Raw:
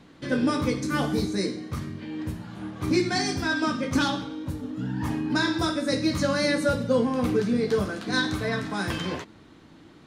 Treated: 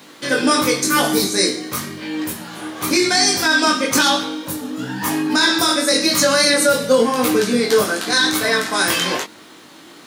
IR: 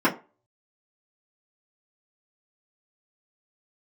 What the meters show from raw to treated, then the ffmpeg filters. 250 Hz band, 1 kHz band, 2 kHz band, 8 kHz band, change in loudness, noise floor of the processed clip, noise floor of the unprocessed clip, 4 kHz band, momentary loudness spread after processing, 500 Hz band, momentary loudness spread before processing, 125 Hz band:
+5.0 dB, +11.0 dB, +11.5 dB, +19.5 dB, +10.0 dB, -43 dBFS, -51 dBFS, +15.0 dB, 12 LU, +9.0 dB, 10 LU, -2.5 dB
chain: -af "highpass=f=270:p=1,aemphasis=mode=production:type=bsi,flanger=delay=19:depth=4.4:speed=0.95,alimiter=level_in=19.5dB:limit=-1dB:release=50:level=0:latency=1,volume=-4dB"

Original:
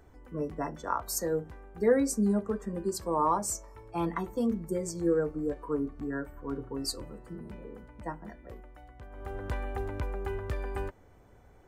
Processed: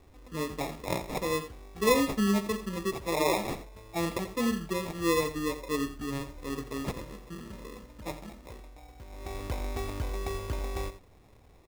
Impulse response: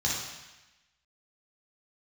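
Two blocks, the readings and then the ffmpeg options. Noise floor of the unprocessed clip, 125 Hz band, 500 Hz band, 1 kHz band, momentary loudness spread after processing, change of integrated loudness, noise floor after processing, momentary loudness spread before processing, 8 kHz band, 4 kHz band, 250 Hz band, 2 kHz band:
-57 dBFS, +1.0 dB, -0.5 dB, -0.5 dB, 17 LU, +0.5 dB, -57 dBFS, 17 LU, -2.5 dB, +6.5 dB, 0.0 dB, +6.5 dB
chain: -af "acrusher=samples=29:mix=1:aa=0.000001,aecho=1:1:85:0.237"

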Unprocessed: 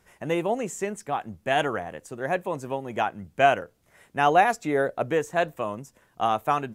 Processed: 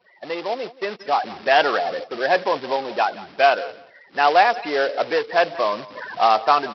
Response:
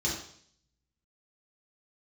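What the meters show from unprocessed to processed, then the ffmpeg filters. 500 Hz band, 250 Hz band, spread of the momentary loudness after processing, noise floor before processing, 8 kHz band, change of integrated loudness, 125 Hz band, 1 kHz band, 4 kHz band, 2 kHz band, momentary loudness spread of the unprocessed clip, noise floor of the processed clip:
+5.0 dB, -2.0 dB, 12 LU, -65 dBFS, n/a, +5.5 dB, under -10 dB, +6.0 dB, +10.0 dB, +6.0 dB, 12 LU, -52 dBFS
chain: -filter_complex "[0:a]aeval=exprs='val(0)+0.5*0.0473*sgn(val(0))':c=same,afftfilt=real='re*gte(hypot(re,im),0.0562)':imag='im*gte(hypot(re,im),0.0562)':win_size=1024:overlap=0.75,dynaudnorm=f=520:g=3:m=14.5dB,aresample=11025,acrusher=bits=3:mode=log:mix=0:aa=0.000001,aresample=44100,agate=range=-16dB:threshold=-29dB:ratio=16:detection=peak,highpass=520,asplit=2[a][b];[b]aecho=0:1:176|352:0.112|0.0202[c];[a][c]amix=inputs=2:normalize=0,volume=-1dB"

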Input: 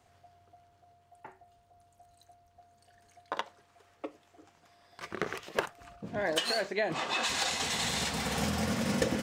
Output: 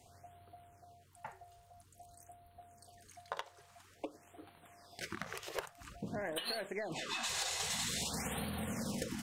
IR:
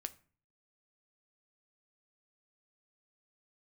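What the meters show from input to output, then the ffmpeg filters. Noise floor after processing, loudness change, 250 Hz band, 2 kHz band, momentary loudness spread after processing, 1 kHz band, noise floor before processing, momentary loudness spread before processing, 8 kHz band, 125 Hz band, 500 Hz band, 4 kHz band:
-64 dBFS, -7.5 dB, -8.0 dB, -8.5 dB, 24 LU, -8.5 dB, -66 dBFS, 17 LU, -3.5 dB, -7.0 dB, -9.0 dB, -7.0 dB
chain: -af "lowshelf=f=400:g=3,aeval=exprs='0.188*(cos(1*acos(clip(val(0)/0.188,-1,1)))-cos(1*PI/2))+0.0188*(cos(3*acos(clip(val(0)/0.188,-1,1)))-cos(3*PI/2))+0.00668*(cos(4*acos(clip(val(0)/0.188,-1,1)))-cos(4*PI/2))+0.0106*(cos(5*acos(clip(val(0)/0.188,-1,1)))-cos(5*PI/2))':c=same,acompressor=threshold=-40dB:ratio=5,equalizer=f=12k:w=0.41:g=9,afftfilt=real='re*(1-between(b*sr/1024,220*pow(6500/220,0.5+0.5*sin(2*PI*0.5*pts/sr))/1.41,220*pow(6500/220,0.5+0.5*sin(2*PI*0.5*pts/sr))*1.41))':imag='im*(1-between(b*sr/1024,220*pow(6500/220,0.5+0.5*sin(2*PI*0.5*pts/sr))/1.41,220*pow(6500/220,0.5+0.5*sin(2*PI*0.5*pts/sr))*1.41))':win_size=1024:overlap=0.75,volume=1.5dB"

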